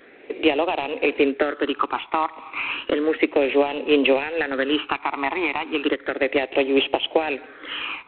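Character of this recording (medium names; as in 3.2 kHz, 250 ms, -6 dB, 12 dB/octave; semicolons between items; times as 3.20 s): phasing stages 12, 0.33 Hz, lowest notch 510–1500 Hz; G.726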